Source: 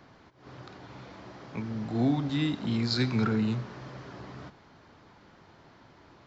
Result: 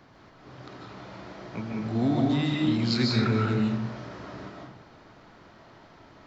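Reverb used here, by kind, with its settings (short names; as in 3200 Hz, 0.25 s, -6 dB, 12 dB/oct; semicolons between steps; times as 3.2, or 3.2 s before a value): digital reverb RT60 0.81 s, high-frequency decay 0.55×, pre-delay 0.11 s, DRR -2 dB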